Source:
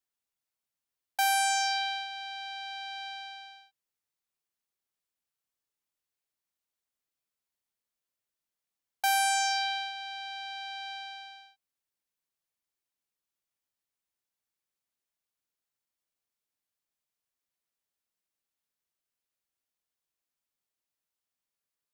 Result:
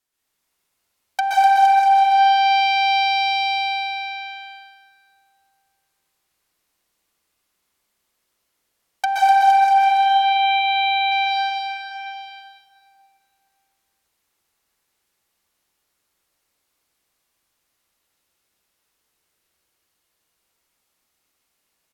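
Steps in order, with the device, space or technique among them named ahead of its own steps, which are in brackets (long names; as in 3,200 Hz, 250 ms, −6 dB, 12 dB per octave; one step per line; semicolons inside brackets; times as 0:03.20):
0:09.78–0:11.12: Chebyshev low-pass filter 4,000 Hz, order 8
treble cut that deepens with the level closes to 800 Hz, closed at −26 dBFS
stairwell (convolution reverb RT60 2.4 s, pre-delay 118 ms, DRR −7 dB)
bouncing-ball delay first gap 250 ms, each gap 0.85×, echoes 5
four-comb reverb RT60 2.5 s, DRR 19.5 dB
level +9 dB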